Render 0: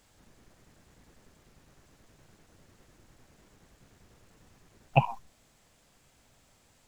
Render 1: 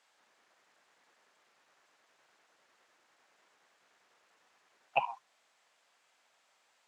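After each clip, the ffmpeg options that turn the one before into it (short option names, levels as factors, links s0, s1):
-af "highpass=850,aemphasis=mode=reproduction:type=50fm,volume=0.891"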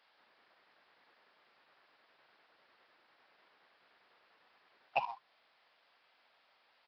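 -af "alimiter=limit=0.119:level=0:latency=1:release=325,aresample=11025,acrusher=bits=5:mode=log:mix=0:aa=0.000001,aresample=44100,volume=1.19"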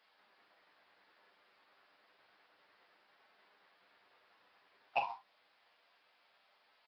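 -filter_complex "[0:a]flanger=delay=4.6:depth=6.3:regen=-62:speed=0.3:shape=sinusoidal,asplit=2[s0][s1];[s1]aecho=0:1:10|42:0.473|0.335[s2];[s0][s2]amix=inputs=2:normalize=0,volume=1.33"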